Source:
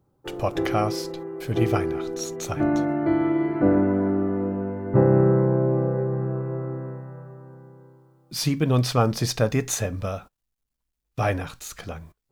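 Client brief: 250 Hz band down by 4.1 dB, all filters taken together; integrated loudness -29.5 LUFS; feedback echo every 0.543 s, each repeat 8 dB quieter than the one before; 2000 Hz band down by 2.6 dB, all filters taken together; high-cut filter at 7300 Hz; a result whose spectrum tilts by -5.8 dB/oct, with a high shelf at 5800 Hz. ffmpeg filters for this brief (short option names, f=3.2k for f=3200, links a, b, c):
-af "lowpass=7.3k,equalizer=f=250:t=o:g=-6,equalizer=f=2k:t=o:g=-4,highshelf=f=5.8k:g=6,aecho=1:1:543|1086|1629|2172|2715:0.398|0.159|0.0637|0.0255|0.0102,volume=-4dB"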